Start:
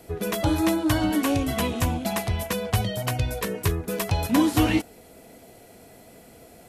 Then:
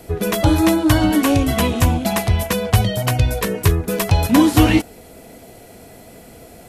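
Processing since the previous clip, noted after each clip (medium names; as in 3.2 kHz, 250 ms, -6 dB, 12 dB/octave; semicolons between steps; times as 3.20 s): bass shelf 98 Hz +5 dB; trim +7 dB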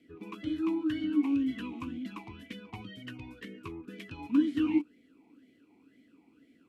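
talking filter i-u 2 Hz; trim -8 dB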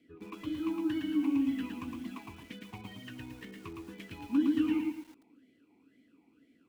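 bit-crushed delay 112 ms, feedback 35%, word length 9-bit, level -3 dB; trim -3 dB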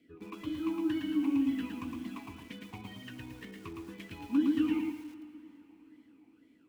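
plate-style reverb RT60 4.1 s, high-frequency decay 0.8×, DRR 14 dB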